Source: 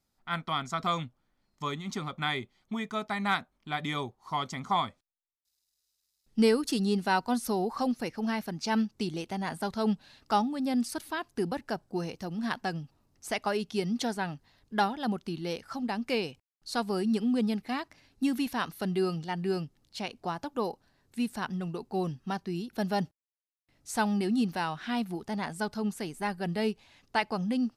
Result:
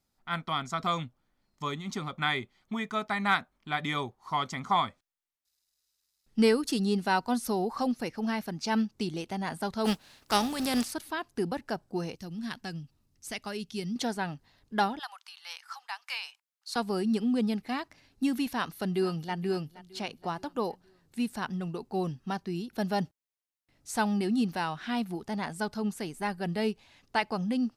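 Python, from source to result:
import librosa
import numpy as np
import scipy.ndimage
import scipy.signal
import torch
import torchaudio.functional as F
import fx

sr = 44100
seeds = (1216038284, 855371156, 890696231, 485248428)

y = fx.peak_eq(x, sr, hz=1600.0, db=3.5, octaves=1.6, at=(2.18, 6.53))
y = fx.spec_flatten(y, sr, power=0.59, at=(9.84, 10.91), fade=0.02)
y = fx.peak_eq(y, sr, hz=750.0, db=-11.0, octaves=2.5, at=(12.16, 13.96))
y = fx.steep_highpass(y, sr, hz=900.0, slope=36, at=(14.99, 16.76))
y = fx.echo_throw(y, sr, start_s=18.47, length_s=0.87, ms=470, feedback_pct=50, wet_db=-18.0)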